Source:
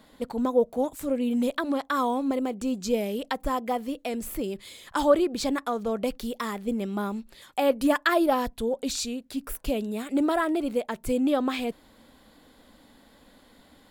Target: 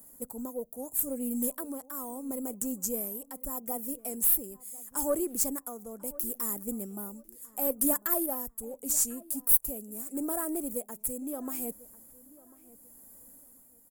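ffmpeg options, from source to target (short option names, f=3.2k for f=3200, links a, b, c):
-filter_complex "[0:a]equalizer=f=4.1k:w=0.36:g=-14.5,acrossover=split=130[a][b];[b]aexciter=amount=13.5:drive=9.3:freq=6k[c];[a][c]amix=inputs=2:normalize=0,tremolo=f=0.76:d=0.56,aeval=exprs='0.944*(cos(1*acos(clip(val(0)/0.944,-1,1)))-cos(1*PI/2))+0.0168*(cos(8*acos(clip(val(0)/0.944,-1,1)))-cos(8*PI/2))':c=same,asplit=2[d][e];[e]adelay=1045,lowpass=f=2.4k:p=1,volume=-20.5dB,asplit=2[f][g];[g]adelay=1045,lowpass=f=2.4k:p=1,volume=0.27[h];[d][f][h]amix=inputs=3:normalize=0,volume=-6.5dB"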